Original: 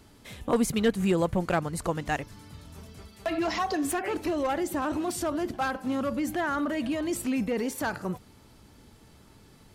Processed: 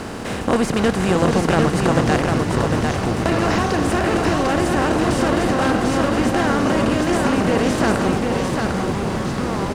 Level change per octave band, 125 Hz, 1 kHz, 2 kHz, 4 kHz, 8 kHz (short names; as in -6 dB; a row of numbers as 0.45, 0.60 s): +15.5, +11.5, +11.5, +12.5, +8.0 dB